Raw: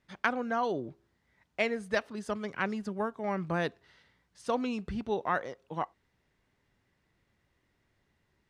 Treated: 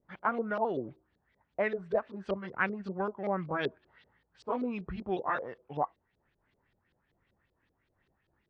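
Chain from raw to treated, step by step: repeated pitch sweeps -2 st, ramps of 0.646 s; LFO low-pass saw up 5.2 Hz 410–4300 Hz; gain -1.5 dB

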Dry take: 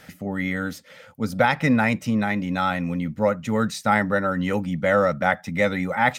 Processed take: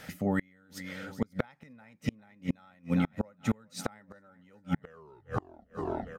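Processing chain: tape stop at the end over 1.49 s; feedback echo 0.406 s, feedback 57%, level -16.5 dB; flipped gate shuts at -16 dBFS, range -35 dB

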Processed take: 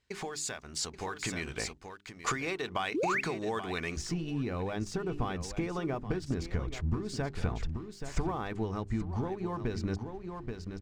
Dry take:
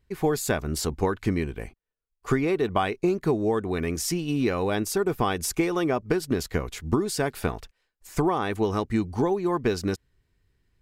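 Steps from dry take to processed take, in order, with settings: dynamic EQ 370 Hz, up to -5 dB, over -34 dBFS, Q 0.83; compressor 6:1, threshold -36 dBFS, peak gain reduction 15 dB; tilt +2.5 dB/oct, from 3.96 s -2 dB/oct; echo 0.83 s -12 dB; vocal rider within 5 dB 0.5 s; LPF 7500 Hz 24 dB/oct; notches 50/100/150/200/250/300/350/400 Hz; 2.94–3.21 painted sound rise 260–2800 Hz -34 dBFS; sample leveller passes 1

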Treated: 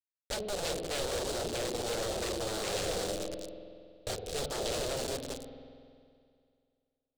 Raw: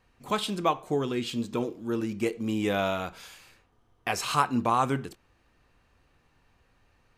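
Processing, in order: median filter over 41 samples; split-band echo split 420 Hz, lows 0.191 s, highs 0.317 s, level -9.5 dB; requantised 6-bit, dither none; limiter -23 dBFS, peak gain reduction 5 dB; tilt shelf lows +7 dB, about 790 Hz; spring tank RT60 2.3 s, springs 47 ms, chirp 20 ms, DRR 10 dB; wavefolder -30.5 dBFS; ten-band EQ 125 Hz -5 dB, 250 Hz -10 dB, 500 Hz +9 dB, 1000 Hz -11 dB, 2000 Hz -6 dB, 4000 Hz +9 dB, 8000 Hz +11 dB; gain +2.5 dB

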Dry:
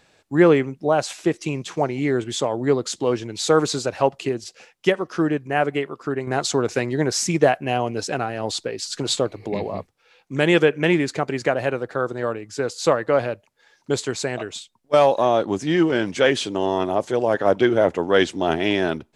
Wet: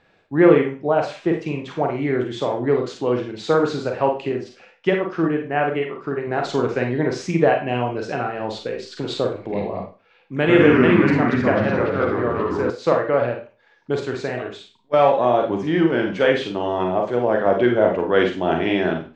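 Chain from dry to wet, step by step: Schroeder reverb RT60 0.33 s, combs from 33 ms, DRR 2 dB; 10.38–12.7 echoes that change speed 0.1 s, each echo -3 st, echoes 3; LPF 2700 Hz 12 dB/oct; gain -1 dB

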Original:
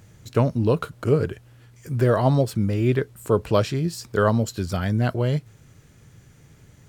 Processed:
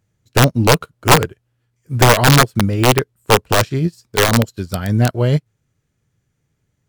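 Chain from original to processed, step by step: in parallel at -2.5 dB: limiter -17 dBFS, peak gain reduction 11.5 dB; on the sum: wrapped overs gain 9.5 dB; upward expander 2.5:1, over -34 dBFS; gain +8.5 dB

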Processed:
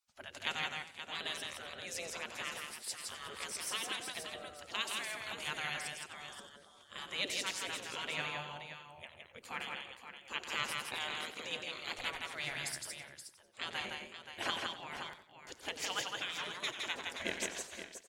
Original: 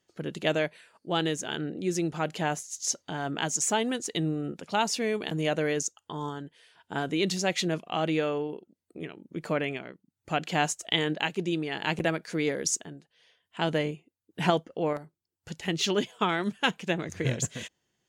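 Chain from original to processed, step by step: spectral gate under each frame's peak -15 dB weak; tapped delay 0.164/0.526 s -3.5/-9.5 dB; warbling echo 91 ms, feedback 36%, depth 86 cents, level -13 dB; gain -2 dB

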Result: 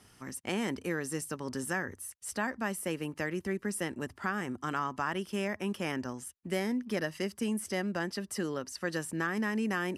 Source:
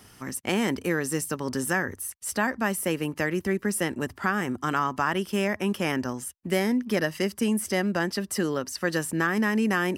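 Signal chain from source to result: LPF 12000 Hz 24 dB/oct; gain -7.5 dB

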